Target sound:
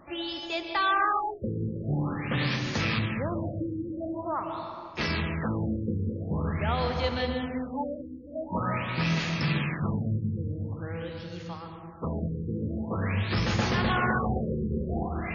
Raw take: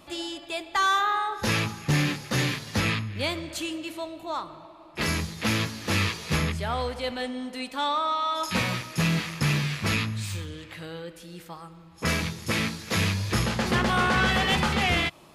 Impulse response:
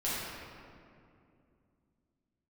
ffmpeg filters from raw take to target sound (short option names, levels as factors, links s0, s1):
-filter_complex "[0:a]alimiter=limit=0.106:level=0:latency=1:release=30,asplit=2[s0][s1];[1:a]atrim=start_sample=2205,adelay=121[s2];[s1][s2]afir=irnorm=-1:irlink=0,volume=0.282[s3];[s0][s3]amix=inputs=2:normalize=0,afftfilt=real='re*lt(b*sr/1024,510*pow(7000/510,0.5+0.5*sin(2*PI*0.46*pts/sr)))':imag='im*lt(b*sr/1024,510*pow(7000/510,0.5+0.5*sin(2*PI*0.46*pts/sr)))':win_size=1024:overlap=0.75"